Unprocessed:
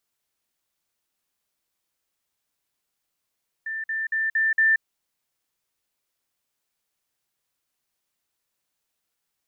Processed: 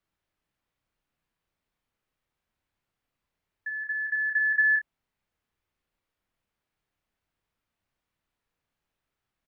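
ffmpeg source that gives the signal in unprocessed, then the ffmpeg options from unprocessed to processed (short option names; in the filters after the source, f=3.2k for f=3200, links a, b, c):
-f lavfi -i "aevalsrc='pow(10,(-27.5+3*floor(t/0.23))/20)*sin(2*PI*1780*t)*clip(min(mod(t,0.23),0.18-mod(t,0.23))/0.005,0,1)':d=1.15:s=44100"
-af "bass=f=250:g=9,treble=f=4k:g=-15,afreqshift=-51,aecho=1:1:31|56:0.447|0.178"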